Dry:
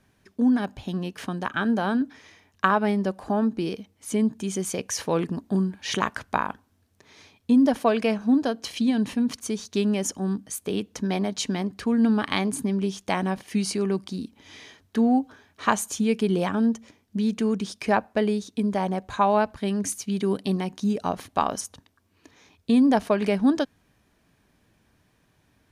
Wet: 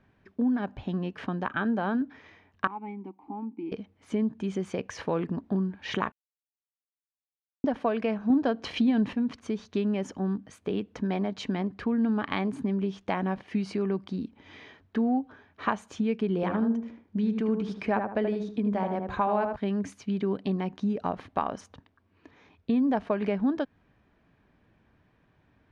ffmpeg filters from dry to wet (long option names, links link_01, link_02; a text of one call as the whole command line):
ffmpeg -i in.wav -filter_complex "[0:a]asettb=1/sr,asplit=3[link_01][link_02][link_03];[link_01]atrim=end=2.674[link_04];[link_02]atrim=start=2.67:end=3.72,asetpts=PTS-STARTPTS,afade=type=in:duration=0.004:curve=qsin,afade=type=out:start_time=1.046:duration=0.004:curve=qsin,asplit=3[link_05][link_06][link_07];[link_05]bandpass=frequency=300:width_type=q:width=8,volume=0dB[link_08];[link_06]bandpass=frequency=870:width_type=q:width=8,volume=-6dB[link_09];[link_07]bandpass=frequency=2240:width_type=q:width=8,volume=-9dB[link_10];[link_08][link_09][link_10]amix=inputs=3:normalize=0[link_11];[link_03]atrim=start=3.716[link_12];[link_04][link_11]acrossfade=duration=0.004:curve1=hsin:curve2=qsin[link_13];[link_13][link_12]acrossfade=duration=0.004:curve1=qsin:curve2=hsin,asettb=1/sr,asplit=3[link_14][link_15][link_16];[link_14]atrim=end=8.304[link_17];[link_15]atrim=start=8.3:end=9.13,asetpts=PTS-STARTPTS,afade=type=in:duration=0.004:curve=qsin,afade=type=out:start_time=0.826:duration=0.004:curve=qsin,acontrast=72[link_18];[link_16]atrim=start=9.126[link_19];[link_17][link_18]acrossfade=duration=0.004:curve1=hsin:curve2=qsin[link_20];[link_20][link_19]acrossfade=duration=0.004:curve1=qsin:curve2=hsin,asettb=1/sr,asplit=3[link_21][link_22][link_23];[link_21]atrim=end=16.354[link_24];[link_22]atrim=start=16.35:end=19.56,asetpts=PTS-STARTPTS,afade=type=in:duration=0.004:curve=qsin,afade=type=out:start_time=3.206:duration=0.004:curve=qsin,asplit=2[link_25][link_26];[link_26]adelay=78,lowpass=frequency=1400:poles=1,volume=-4.5dB,asplit=2[link_27][link_28];[link_28]adelay=78,lowpass=frequency=1400:poles=1,volume=0.31,asplit=2[link_29][link_30];[link_30]adelay=78,lowpass=frequency=1400:poles=1,volume=0.31,asplit=2[link_31][link_32];[link_32]adelay=78,lowpass=frequency=1400:poles=1,volume=0.31[link_33];[link_25][link_27][link_29][link_31][link_33]amix=inputs=5:normalize=0,atrim=end_sample=141561[link_34];[link_23]atrim=start=19.556[link_35];[link_24][link_34]acrossfade=duration=0.004:curve1=hsin:curve2=qsin[link_36];[link_36][link_35]acrossfade=duration=0.004:curve1=qsin:curve2=hsin,asplit=3[link_37][link_38][link_39];[link_37]atrim=end=6.12,asetpts=PTS-STARTPTS,afade=type=out:start_time=6.116:duration=0.004:curve=hsin[link_40];[link_38]atrim=start=6.12:end=7.64,asetpts=PTS-STARTPTS,volume=0[link_41];[link_39]atrim=start=7.64,asetpts=PTS-STARTPTS,afade=type=in:duration=0.004:curve=hsin[link_42];[link_40][link_41][link_42]concat=n=3:v=0:a=1,lowpass=2400,acompressor=threshold=-27dB:ratio=2" out.wav